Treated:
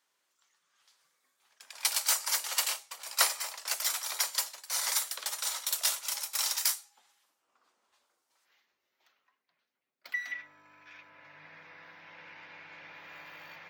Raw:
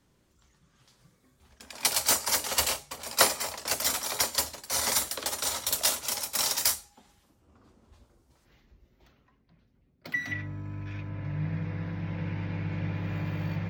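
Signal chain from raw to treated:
high-pass filter 990 Hz 12 dB per octave
level −3 dB

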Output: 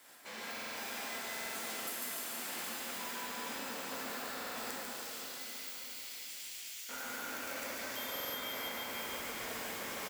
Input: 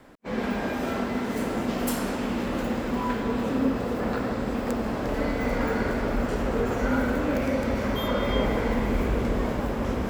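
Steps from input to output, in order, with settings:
first difference
repeating echo 145 ms, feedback 38%, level −5 dB
shaped tremolo triangle 2 Hz, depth 50%
downward compressor 6 to 1, threshold −53 dBFS, peak gain reduction 19.5 dB
0:04.80–0:06.89: inverse Chebyshev high-pass filter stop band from 590 Hz, stop band 70 dB
dense smooth reverb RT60 4.5 s, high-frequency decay 0.8×, DRR −4.5 dB
buffer that repeats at 0:00.53/0:01.32/0:04.33/0:08.11, samples 2,048, times 4
feedback echo at a low word length 324 ms, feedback 55%, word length 11 bits, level −8.5 dB
level +8.5 dB

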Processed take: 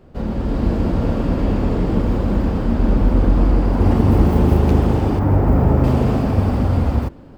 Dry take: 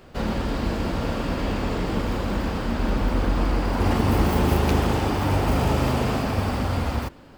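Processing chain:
0:05.19–0:05.84: flat-topped bell 5,600 Hz −10.5 dB 2.5 octaves
automatic gain control gain up to 5.5 dB
tilt shelving filter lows +7.5 dB, about 870 Hz
level −4 dB

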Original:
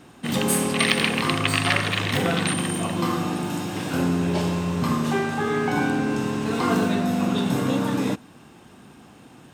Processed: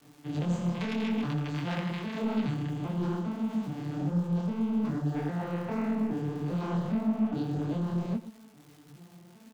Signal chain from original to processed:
vocoder with an arpeggio as carrier minor triad, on D3, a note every 406 ms
surface crackle 270 per second −41 dBFS
soft clipping −22 dBFS, distortion −14 dB
single-tap delay 127 ms −15.5 dB
micro pitch shift up and down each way 58 cents

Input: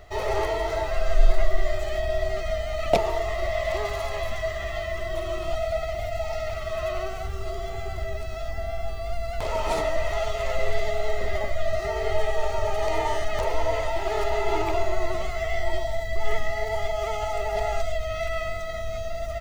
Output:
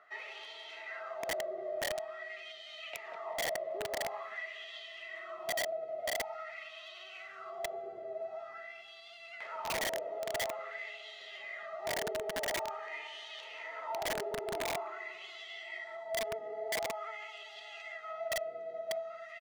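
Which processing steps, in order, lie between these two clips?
high-pass filter 140 Hz 24 dB per octave
repeating echo 186 ms, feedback 32%, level −8 dB
downward compressor 2 to 1, threshold −30 dBFS, peak gain reduction 9 dB
LFO wah 0.47 Hz 470–3,400 Hz, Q 3.6
notch filter 1,000 Hz, Q 15
on a send at −23 dB: convolution reverb RT60 3.5 s, pre-delay 3 ms
on the sum: wrap-around overflow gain 29.5 dB

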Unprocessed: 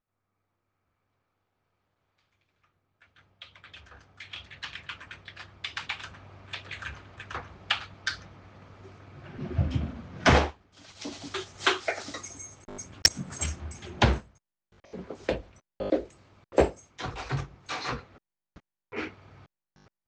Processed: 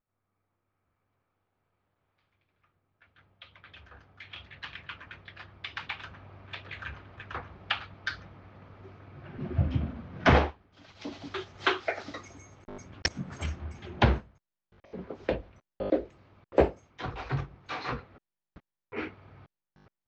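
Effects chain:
high-frequency loss of the air 210 metres

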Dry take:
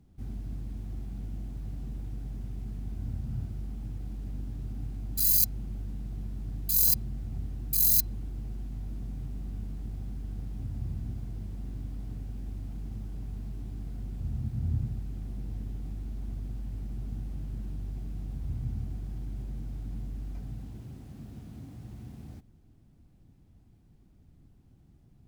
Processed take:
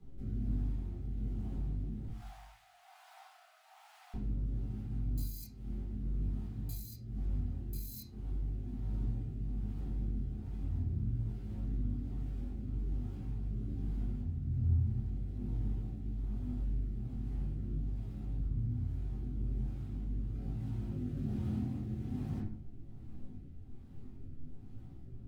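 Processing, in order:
0:02.07–0:04.14: Butterworth high-pass 670 Hz 96 dB per octave
downward compressor 8 to 1, threshold −42 dBFS, peak gain reduction 22.5 dB
chorus effect 0.44 Hz, delay 18 ms, depth 5.4 ms
rotating-speaker cabinet horn 1.2 Hz
flanger 1.8 Hz, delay 6.3 ms, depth 4 ms, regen −75%
convolution reverb RT60 0.50 s, pre-delay 4 ms, DRR −6.5 dB
level +6 dB

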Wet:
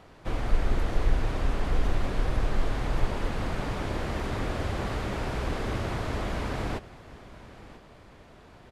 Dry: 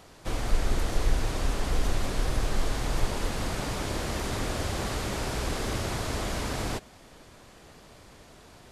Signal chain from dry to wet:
bass and treble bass +1 dB, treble −13 dB
single-tap delay 993 ms −18 dB

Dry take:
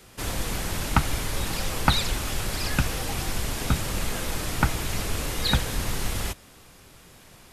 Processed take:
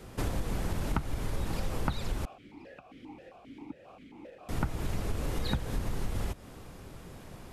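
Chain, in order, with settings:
tilt shelving filter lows +6.5 dB, about 1,300 Hz
downward compressor 6 to 1, threshold −28 dBFS, peak gain reduction 18 dB
0:02.25–0:04.49: formant filter that steps through the vowels 7.5 Hz

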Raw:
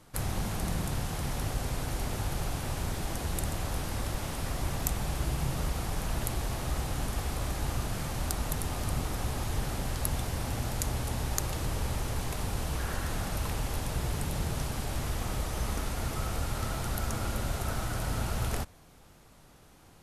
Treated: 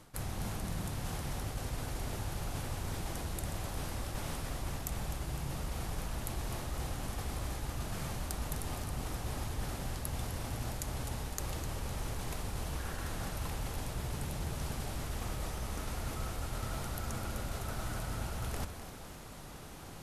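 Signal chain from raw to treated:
reversed playback
downward compressor 6 to 1, threshold −44 dBFS, peak gain reduction 18.5 dB
reversed playback
echo with a time of its own for lows and highs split 460 Hz, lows 178 ms, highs 254 ms, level −11 dB
level +8 dB

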